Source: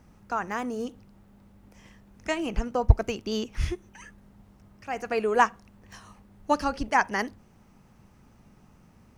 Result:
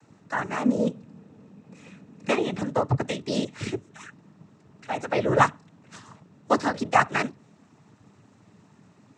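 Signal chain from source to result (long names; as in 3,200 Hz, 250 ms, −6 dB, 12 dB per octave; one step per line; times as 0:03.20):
sub-octave generator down 2 octaves, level +3 dB
cochlear-implant simulation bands 12
0:00.65–0:02.43: hollow resonant body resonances 220/480/2,500 Hz, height 8 dB, ringing for 25 ms
level +2.5 dB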